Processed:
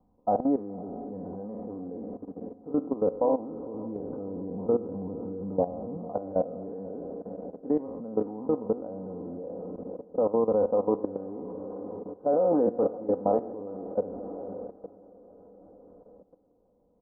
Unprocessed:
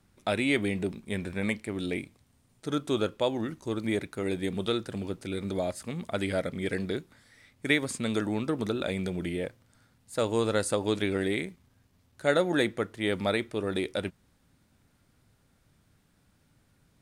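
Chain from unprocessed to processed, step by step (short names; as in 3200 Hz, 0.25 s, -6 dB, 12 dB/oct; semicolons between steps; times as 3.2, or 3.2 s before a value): spectral trails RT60 0.70 s; steep low-pass 950 Hz 48 dB/oct; low shelf 380 Hz -9.5 dB; comb 4 ms, depth 64%; diffused feedback echo 0.525 s, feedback 51%, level -10.5 dB; level quantiser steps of 15 dB; 3.74–5.97 bell 120 Hz +8 dB 1.6 oct; gain +7.5 dB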